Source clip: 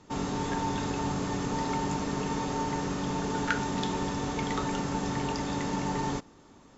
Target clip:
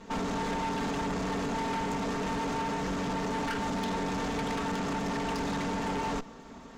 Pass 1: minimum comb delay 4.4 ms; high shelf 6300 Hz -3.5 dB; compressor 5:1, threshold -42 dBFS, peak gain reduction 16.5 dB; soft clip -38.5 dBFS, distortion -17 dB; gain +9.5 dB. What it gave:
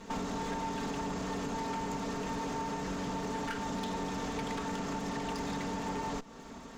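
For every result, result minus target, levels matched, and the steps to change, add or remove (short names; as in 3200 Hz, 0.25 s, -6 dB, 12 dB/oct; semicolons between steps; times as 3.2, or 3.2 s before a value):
compressor: peak gain reduction +9 dB; 8000 Hz band +2.5 dB
change: compressor 5:1, threshold -31 dBFS, peak gain reduction 7.5 dB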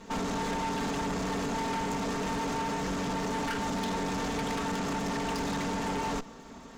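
8000 Hz band +3.5 dB
change: high shelf 6300 Hz -11 dB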